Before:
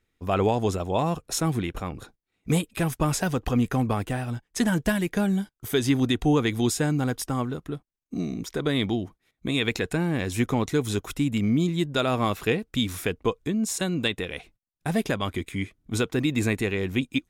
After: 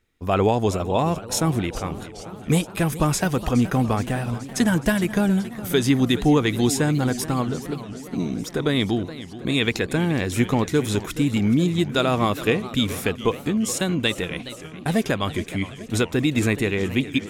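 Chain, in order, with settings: modulated delay 419 ms, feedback 70%, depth 180 cents, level -15 dB; trim +3.5 dB

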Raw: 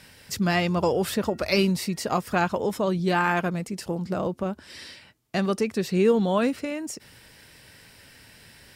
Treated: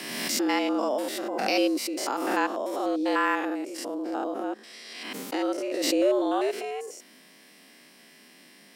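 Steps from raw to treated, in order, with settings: spectrogram pixelated in time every 100 ms; frequency shift +140 Hz; swell ahead of each attack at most 34 dB/s; trim -1.5 dB

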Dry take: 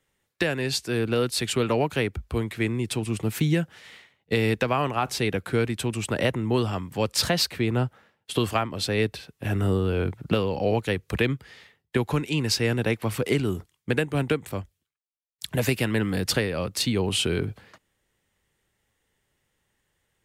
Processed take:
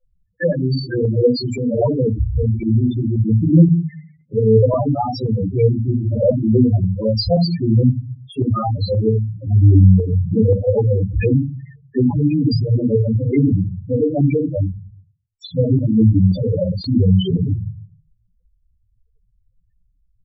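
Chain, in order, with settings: simulated room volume 240 m³, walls furnished, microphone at 5.9 m; loudest bins only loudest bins 4; LFO notch saw up 1.9 Hz 320–4300 Hz; trim +1.5 dB

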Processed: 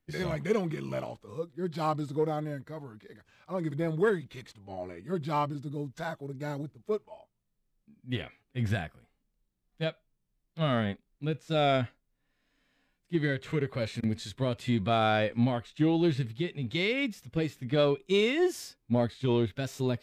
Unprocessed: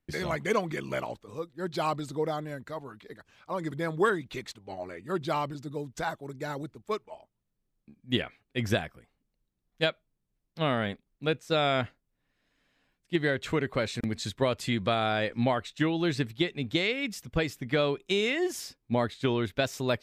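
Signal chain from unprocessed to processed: harmonic-percussive split percussive -15 dB; in parallel at -11.5 dB: hard clipper -27.5 dBFS, distortion -11 dB; on the sum: trim +1.5 dB

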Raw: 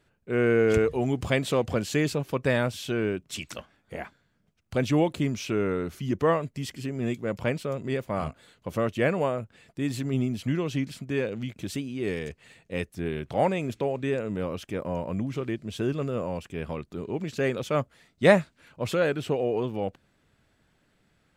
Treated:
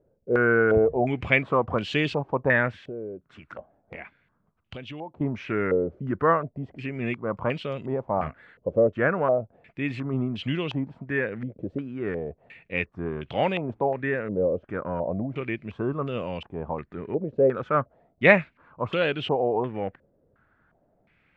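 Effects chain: 2.75–5.21 s: compression 4:1, threshold -39 dBFS, peak gain reduction 17 dB; step-sequenced low-pass 2.8 Hz 530–3000 Hz; trim -1 dB

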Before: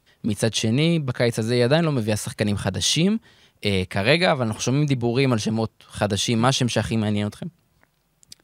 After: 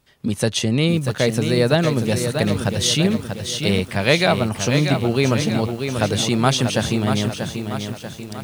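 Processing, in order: bit-crushed delay 638 ms, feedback 55%, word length 7-bit, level -6.5 dB; trim +1.5 dB

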